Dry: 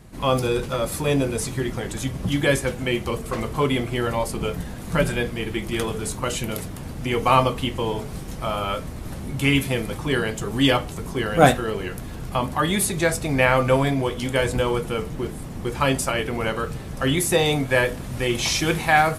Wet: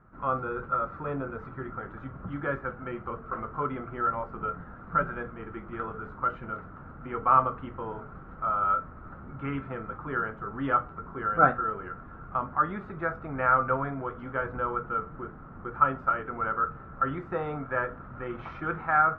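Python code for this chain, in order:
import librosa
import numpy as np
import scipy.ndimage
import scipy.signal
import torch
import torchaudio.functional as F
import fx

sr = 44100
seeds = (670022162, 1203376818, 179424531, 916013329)

y = fx.ladder_lowpass(x, sr, hz=1400.0, resonance_pct=85)
y = fx.hum_notches(y, sr, base_hz=60, count=2)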